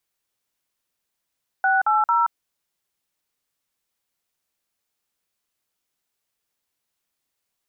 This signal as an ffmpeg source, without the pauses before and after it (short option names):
-f lavfi -i "aevalsrc='0.119*clip(min(mod(t,0.224),0.176-mod(t,0.224))/0.002,0,1)*(eq(floor(t/0.224),0)*(sin(2*PI*770*mod(t,0.224))+sin(2*PI*1477*mod(t,0.224)))+eq(floor(t/0.224),1)*(sin(2*PI*852*mod(t,0.224))+sin(2*PI*1336*mod(t,0.224)))+eq(floor(t/0.224),2)*(sin(2*PI*941*mod(t,0.224))+sin(2*PI*1336*mod(t,0.224))))':d=0.672:s=44100"